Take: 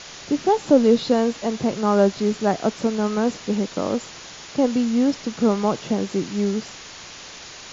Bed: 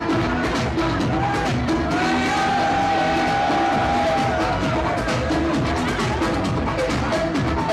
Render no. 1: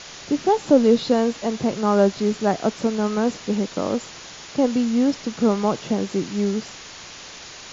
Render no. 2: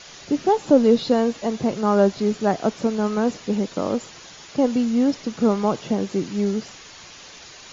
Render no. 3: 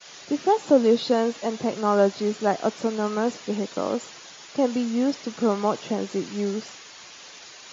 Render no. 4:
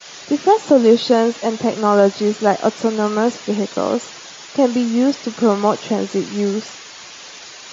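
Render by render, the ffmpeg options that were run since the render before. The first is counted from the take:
-af anull
-af "afftdn=nr=6:nf=-40"
-af "highpass=f=340:p=1,agate=range=-33dB:threshold=-41dB:ratio=3:detection=peak"
-af "volume=7.5dB,alimiter=limit=-2dB:level=0:latency=1"

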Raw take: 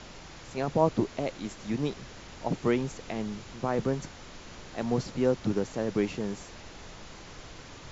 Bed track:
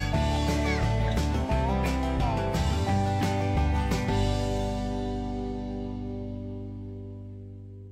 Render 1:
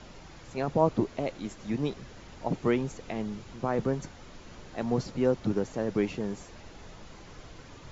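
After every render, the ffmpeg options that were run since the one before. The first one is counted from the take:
-af "afftdn=nr=6:nf=-47"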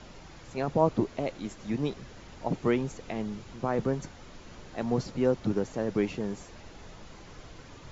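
-af anull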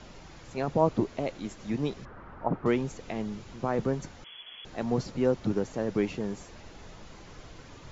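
-filter_complex "[0:a]asettb=1/sr,asplit=3[a][b][c];[a]atrim=end=2.054[d];[b]atrim=start=2.05:end=2.66,asetpts=PTS-STARTPTS,afade=t=in:d=0.004:c=qsin,afade=t=out:st=0.606:d=0.004:c=qsin,lowpass=f=1.3k:t=q:w=2.7[e];[c]atrim=start=2.656[f];[d][e]acrossfade=d=0.004:c1=hsin:c2=qsin[g];[g][f]acrossfade=d=0.004:c1=qsin:c2=hsin,asettb=1/sr,asplit=3[h][i][j];[h]atrim=end=4.244[k];[i]atrim=start=4.24:end=4.65,asetpts=PTS-STARTPTS,afade=t=in:d=0.004:c=qsin,afade=t=out:st=0.406:d=0.004:c=qsin,lowpass=f=2.9k:t=q:w=0.5098,lowpass=f=2.9k:t=q:w=0.6013,lowpass=f=2.9k:t=q:w=0.9,lowpass=f=2.9k:t=q:w=2.563,afreqshift=-3400[l];[j]atrim=start=4.646[m];[k][l]acrossfade=d=0.004:c1=hsin:c2=qsin[n];[n][m]acrossfade=d=0.004:c1=qsin:c2=hsin"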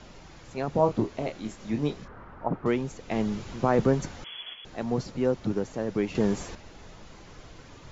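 -filter_complex "[0:a]asettb=1/sr,asplit=3[a][b][c];[a]atrim=end=0.704[d];[b]atrim=start=0.7:end=2.25,asetpts=PTS-STARTPTS,afade=t=in:d=0.004:c=qsin,afade=t=out:st=1.546:d=0.004:c=qsin,asplit=2[e][f];[f]adelay=27,volume=-6dB[g];[e][g]amix=inputs=2:normalize=0,atrim=end_sample=68355[h];[c]atrim=start=2.246[i];[d][h]acrossfade=d=0.004:c1=hsin:c2=qsin[j];[j][i]acrossfade=d=0.004:c1=qsin:c2=hsin,asettb=1/sr,asplit=3[k][l][m];[k]atrim=end=3.114[n];[l]atrim=start=3.11:end=4.54,asetpts=PTS-STARTPTS,afade=t=in:d=0.004:c=qsin,afade=t=out:st=1.426:d=0.004:c=qsin,acontrast=58[o];[m]atrim=start=4.536[p];[n][o]acrossfade=d=0.004:c1=hsin:c2=qsin[q];[q][p]acrossfade=d=0.004:c1=qsin:c2=hsin,asplit=3[r][s][t];[r]atrim=end=6.152[u];[s]atrim=start=6.148:end=6.552,asetpts=PTS-STARTPTS,volume=8.5dB[v];[t]atrim=start=6.548[w];[u][v]acrossfade=d=0.004:c1=hsin:c2=hsin[x];[x][w]acrossfade=d=0.004:c1=hsin:c2=hsin"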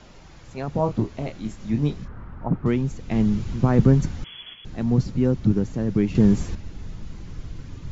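-af "asubboost=boost=6:cutoff=240"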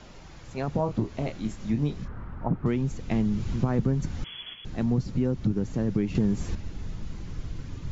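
-af "acompressor=threshold=-22dB:ratio=4"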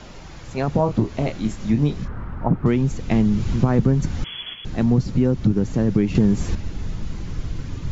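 -af "volume=7.5dB"

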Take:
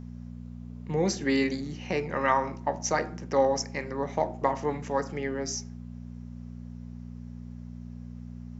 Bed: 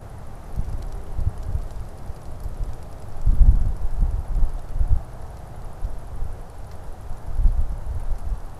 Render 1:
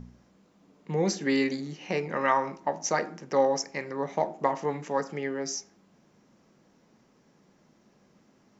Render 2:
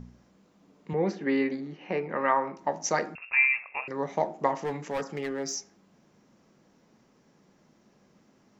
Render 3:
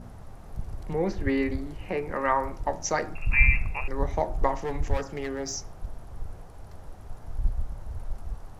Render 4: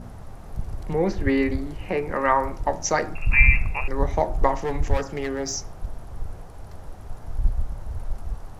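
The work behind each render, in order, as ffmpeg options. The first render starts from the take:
-af "bandreject=f=60:t=h:w=4,bandreject=f=120:t=h:w=4,bandreject=f=180:t=h:w=4,bandreject=f=240:t=h:w=4,bandreject=f=300:t=h:w=4"
-filter_complex "[0:a]asettb=1/sr,asplit=3[a][b][c];[a]atrim=end=0.934[d];[b]atrim=start=0.93:end=2.57,asetpts=PTS-STARTPTS,afade=t=in:d=0.004:c=qsin,afade=t=out:st=1.636:d=0.004:c=qsin,highpass=170,lowpass=2.2k[e];[c]atrim=start=2.566[f];[d][e]acrossfade=d=0.004:c1=hsin:c2=qsin[g];[g][f]acrossfade=d=0.004:c1=qsin:c2=hsin,asettb=1/sr,asplit=3[h][i][j];[h]atrim=end=3.154[k];[i]atrim=start=3.15:end=3.88,asetpts=PTS-STARTPTS,afade=t=in:d=0.004:c=qsin,afade=t=out:st=0.726:d=0.004:c=qsin,lowpass=f=2.5k:t=q:w=0.5098,lowpass=f=2.5k:t=q:w=0.6013,lowpass=f=2.5k:t=q:w=0.9,lowpass=f=2.5k:t=q:w=2.563,afreqshift=-2900[l];[j]atrim=start=3.876[m];[k][l]acrossfade=d=0.004:c1=hsin:c2=qsin[n];[n][m]acrossfade=d=0.004:c1=qsin:c2=hsin,asplit=3[o][p][q];[o]afade=t=out:st=4.56:d=0.02[r];[p]asoftclip=type=hard:threshold=-26.5dB,afade=t=in:st=4.56:d=0.02,afade=t=out:st=5.55:d=0.02[s];[q]afade=t=in:st=5.55:d=0.02[t];[r][s][t]amix=inputs=3:normalize=0"
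-filter_complex "[1:a]volume=-8dB[a];[0:a][a]amix=inputs=2:normalize=0"
-af "volume=4.5dB,alimiter=limit=-3dB:level=0:latency=1"

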